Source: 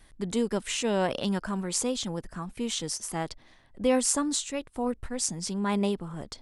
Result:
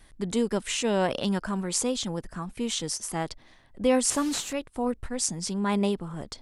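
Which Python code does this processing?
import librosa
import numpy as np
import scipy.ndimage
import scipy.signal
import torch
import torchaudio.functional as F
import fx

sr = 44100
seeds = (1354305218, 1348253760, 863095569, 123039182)

y = fx.delta_mod(x, sr, bps=64000, step_db=-34.5, at=(4.1, 4.53))
y = y * 10.0 ** (1.5 / 20.0)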